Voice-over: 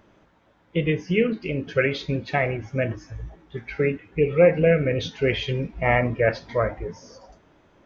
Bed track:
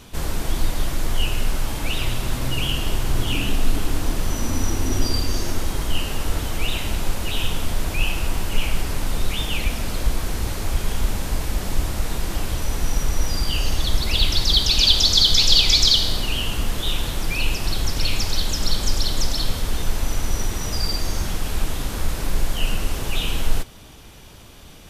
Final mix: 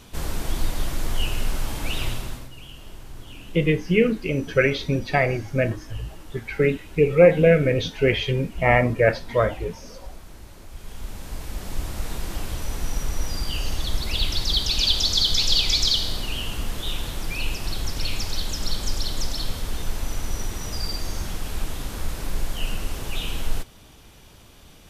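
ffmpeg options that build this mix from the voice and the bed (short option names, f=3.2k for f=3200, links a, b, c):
-filter_complex "[0:a]adelay=2800,volume=2.5dB[a];[1:a]volume=11dB,afade=t=out:st=2.06:d=0.43:silence=0.158489,afade=t=in:st=10.68:d=1.41:silence=0.199526[b];[a][b]amix=inputs=2:normalize=0"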